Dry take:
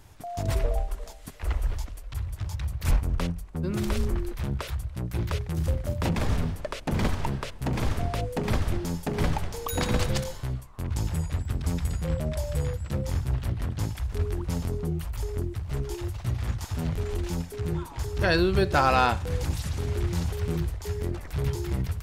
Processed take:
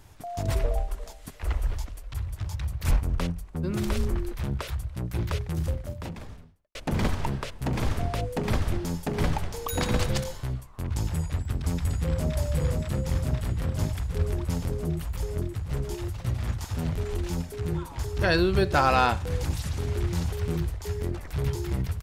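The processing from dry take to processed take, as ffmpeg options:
-filter_complex "[0:a]asplit=2[a][b];[b]afade=t=in:st=11.34:d=0.01,afade=t=out:st=12.36:d=0.01,aecho=0:1:520|1040|1560|2080|2600|3120|3640|4160|4680|5200|5720|6240:0.630957|0.504766|0.403813|0.32305|0.25844|0.206752|0.165402|0.132321|0.105857|0.0846857|0.0677485|0.0541988[c];[a][c]amix=inputs=2:normalize=0,asplit=2[d][e];[d]atrim=end=6.75,asetpts=PTS-STARTPTS,afade=t=out:st=5.55:d=1.2:c=qua[f];[e]atrim=start=6.75,asetpts=PTS-STARTPTS,afade=t=in:d=0.004:c=hsin[g];[f][g]concat=n=2:v=0:a=1"

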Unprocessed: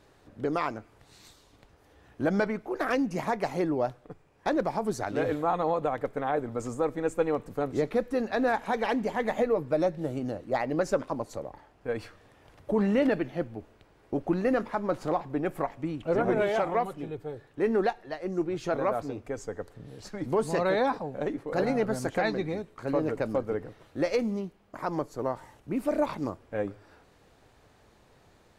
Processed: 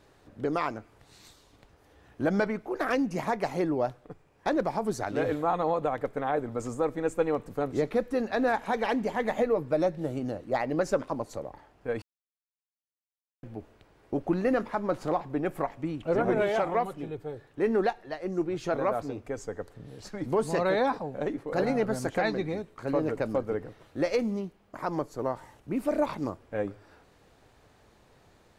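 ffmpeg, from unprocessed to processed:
-filter_complex "[0:a]asplit=3[a][b][c];[a]atrim=end=12.02,asetpts=PTS-STARTPTS,afade=t=out:st=12.016:d=0.004:c=hsin[d];[b]atrim=start=12.02:end=13.43,asetpts=PTS-STARTPTS,volume=0[e];[c]atrim=start=13.43,asetpts=PTS-STARTPTS,afade=t=in:d=0.004:c=hsin[f];[d][e][f]concat=n=3:v=0:a=1"

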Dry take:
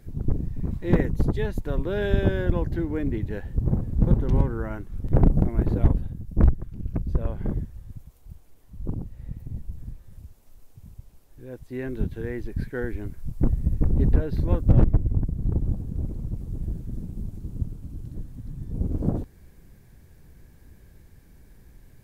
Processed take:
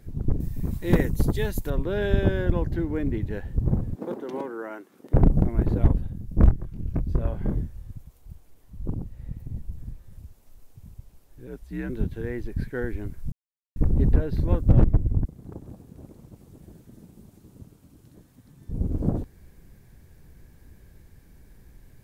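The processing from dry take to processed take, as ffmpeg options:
-filter_complex "[0:a]asettb=1/sr,asplit=3[a][b][c];[a]atrim=end=0.404[d];[b]atrim=start=0.4:end=1.7,asetpts=PTS-STARTPTS,afade=t=in:d=0.004:c=qsin,afade=t=out:st=1.296:d=0.004:c=qsin,aemphasis=mode=production:type=75kf[e];[c]atrim=start=1.696[f];[d][e]acrossfade=d=0.004:c1=hsin:c2=qsin[g];[g][f]acrossfade=d=0.004:c1=qsin:c2=hsin,asettb=1/sr,asplit=3[h][i][j];[h]atrim=end=3.954[k];[i]atrim=start=3.95:end=5.14,asetpts=PTS-STARTPTS,afade=t=in:d=0.004:c=qsin,afade=t=out:st=1.186:d=0.004:c=qsin,highpass=f=300:w=0.5412,highpass=f=300:w=1.3066[l];[j]atrim=start=5.136[m];[k][l]acrossfade=d=0.004:c1=hsin:c2=qsin[n];[n][m]acrossfade=d=0.004:c1=qsin:c2=hsin,asettb=1/sr,asplit=3[o][p][q];[o]atrim=end=6.114[r];[p]atrim=start=6.11:end=7.91,asetpts=PTS-STARTPTS,afade=t=in:d=0.004:c=qsin,afade=t=out:st=1.796:d=0.004:c=qsin,asplit=2[s][t];[t]adelay=25,volume=-6.5dB[u];[s][u]amix=inputs=2:normalize=0,atrim=end_sample=79380[v];[q]atrim=start=7.906[w];[r][v]acrossfade=d=0.004:c1=hsin:c2=qsin[x];[x][w]acrossfade=d=0.004:c1=qsin:c2=hsin,asettb=1/sr,asplit=3[y][z][aa];[y]atrim=end=11.474[ab];[z]atrim=start=11.47:end=11.9,asetpts=PTS-STARTPTS,afade=t=in:d=0.004:c=qsin,afade=t=out:st=0.426:d=0.004:c=qsin,afreqshift=-75[ac];[aa]atrim=start=11.896[ad];[ab][ac]acrossfade=d=0.004:c1=hsin:c2=qsin[ae];[ae][ad]acrossfade=d=0.004:c1=qsin:c2=hsin,asettb=1/sr,asplit=3[af][ag][ah];[af]atrim=end=15.254[ai];[ag]atrim=start=15.25:end=18.69,asetpts=PTS-STARTPTS,afade=t=in:d=0.004:c=qsin,afade=t=out:st=3.436:d=0.004:c=qsin,highpass=f=680:p=1[aj];[ah]atrim=start=18.686[ak];[ai][aj]acrossfade=d=0.004:c1=hsin:c2=qsin[al];[al][ak]acrossfade=d=0.004:c1=qsin:c2=hsin,asplit=3[am][an][ao];[am]atrim=end=13.32,asetpts=PTS-STARTPTS,afade=t=out:st=13.316:d=0.004:c=hsin[ap];[an]atrim=start=13.32:end=13.76,asetpts=PTS-STARTPTS,volume=0[aq];[ao]atrim=start=13.76,asetpts=PTS-STARTPTS,afade=t=in:d=0.004:c=hsin[ar];[ap][aq][ar]concat=n=3:v=0:a=1"

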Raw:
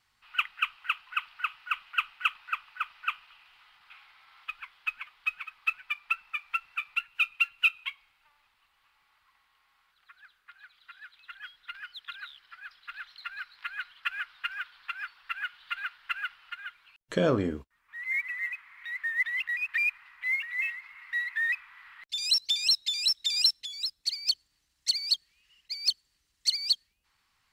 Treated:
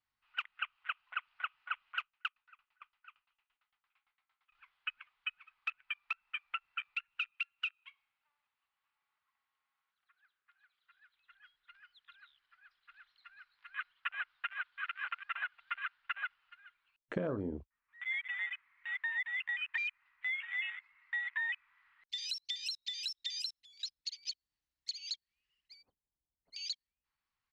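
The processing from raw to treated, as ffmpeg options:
-filter_complex "[0:a]asettb=1/sr,asplit=3[a][b][c];[a]atrim=end=2.024[d];[b]atrim=start=2.02:end=4.55,asetpts=PTS-STARTPTS,afade=t=in:d=0.004:c=qsin,afade=t=out:st=2.526:d=0.004:c=qsin,aeval=exprs='val(0)*pow(10,-24*if(lt(mod(8.8*n/s,1),2*abs(8.8)/1000),1-mod(8.8*n/s,1)/(2*abs(8.8)/1000),(mod(8.8*n/s,1)-2*abs(8.8)/1000)/(1-2*abs(8.8)/1000))/20)':c=same[e];[c]atrim=start=4.546[f];[d][e]acrossfade=d=0.004:c1=hsin:c2=qsin[g];[g][f]acrossfade=d=0.004:c1=qsin:c2=hsin,asettb=1/sr,asplit=3[h][i][j];[h]atrim=end=7.294[k];[i]atrim=start=7.29:end=10.91,asetpts=PTS-STARTPTS,afade=t=in:d=0.004:c=qsin,afade=t=out:st=3.616:d=0.004:c=qsin,highpass=f=140:p=1[l];[j]atrim=start=10.906[m];[k][l]acrossfade=d=0.004:c1=hsin:c2=qsin[n];[n][m]acrossfade=d=0.004:c1=qsin:c2=hsin,asplit=2[o][p];[p]afade=t=in:st=14.54:d=0.01,afade=t=out:st=15:d=0.01,aecho=0:1:230|460|690|920|1150|1380|1610:0.944061|0.47203|0.236015|0.118008|0.0590038|0.0295019|0.014751[q];[o][q]amix=inputs=2:normalize=0,asplit=3[r][s][t];[r]afade=t=out:st=25.81:d=0.02[u];[s]lowpass=f=1k:w=0.5412,lowpass=f=1k:w=1.3066,afade=t=in:st=25.81:d=0.02,afade=t=out:st=26.52:d=0.02[v];[t]afade=t=in:st=26.52:d=0.02[w];[u][v][w]amix=inputs=3:normalize=0,afwtdn=0.02,acompressor=threshold=-32dB:ratio=10,highshelf=f=5k:g=-11"

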